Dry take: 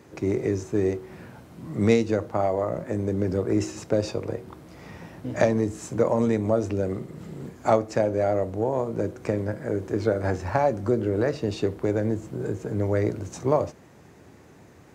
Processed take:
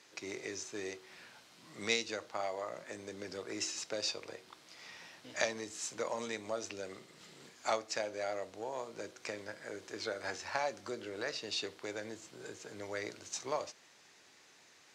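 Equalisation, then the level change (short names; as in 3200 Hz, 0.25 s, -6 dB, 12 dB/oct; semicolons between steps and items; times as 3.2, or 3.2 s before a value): band-pass 4400 Hz, Q 1.2; +4.5 dB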